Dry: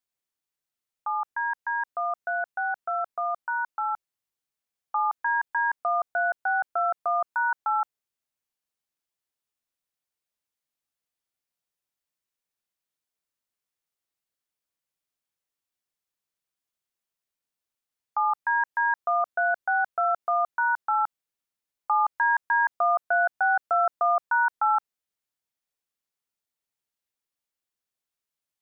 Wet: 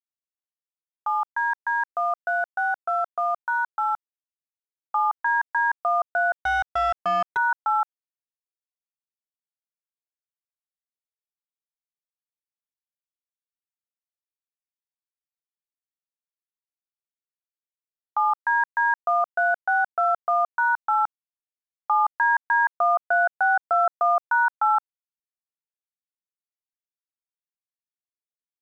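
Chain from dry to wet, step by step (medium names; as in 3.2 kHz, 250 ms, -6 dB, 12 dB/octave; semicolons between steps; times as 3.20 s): in parallel at 0 dB: peak limiter -26 dBFS, peak gain reduction 10.5 dB; 6.41–7.37 s: on the sum: overdrive pedal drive 17 dB, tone 1.2 kHz, clips at -15 dBFS; crossover distortion -56 dBFS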